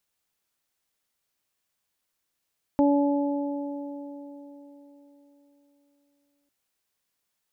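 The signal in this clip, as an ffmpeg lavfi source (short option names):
-f lavfi -i "aevalsrc='0.133*pow(10,-3*t/3.92)*sin(2*PI*285*t)+0.0708*pow(10,-3*t/3.87)*sin(2*PI*570*t)+0.0473*pow(10,-3*t/3.28)*sin(2*PI*855*t)':d=3.7:s=44100"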